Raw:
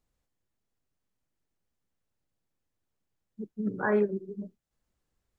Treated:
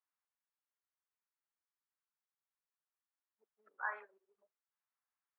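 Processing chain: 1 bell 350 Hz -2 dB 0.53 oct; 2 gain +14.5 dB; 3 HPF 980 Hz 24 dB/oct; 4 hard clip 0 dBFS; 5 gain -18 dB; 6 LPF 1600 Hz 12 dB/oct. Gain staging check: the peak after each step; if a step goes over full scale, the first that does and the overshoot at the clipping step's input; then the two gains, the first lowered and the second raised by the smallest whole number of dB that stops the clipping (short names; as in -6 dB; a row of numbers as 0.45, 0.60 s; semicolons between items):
-15.0, -0.5, -4.0, -4.0, -22.0, -24.0 dBFS; no overload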